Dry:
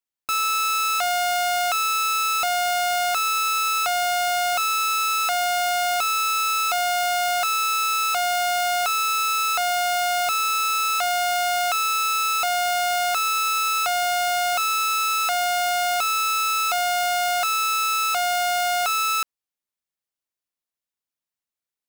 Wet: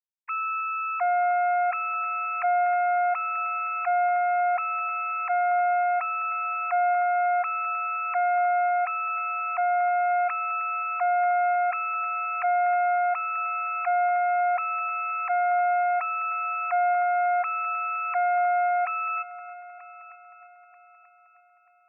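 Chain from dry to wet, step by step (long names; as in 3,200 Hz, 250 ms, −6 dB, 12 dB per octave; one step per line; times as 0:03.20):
three sine waves on the formant tracks
echo machine with several playback heads 312 ms, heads first and third, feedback 52%, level −18.5 dB
level −2.5 dB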